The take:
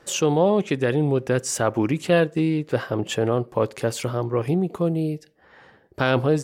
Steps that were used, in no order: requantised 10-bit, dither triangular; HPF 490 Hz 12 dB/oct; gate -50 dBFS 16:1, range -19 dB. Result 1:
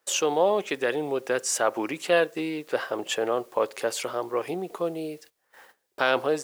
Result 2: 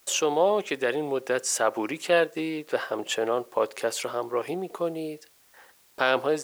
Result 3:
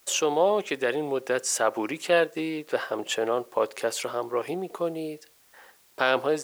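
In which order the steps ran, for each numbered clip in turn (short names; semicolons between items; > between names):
HPF > requantised > gate; HPF > gate > requantised; gate > HPF > requantised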